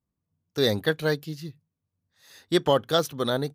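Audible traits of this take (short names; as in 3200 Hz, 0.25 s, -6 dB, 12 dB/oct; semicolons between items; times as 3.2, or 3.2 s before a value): noise floor -85 dBFS; spectral tilt -3.5 dB/oct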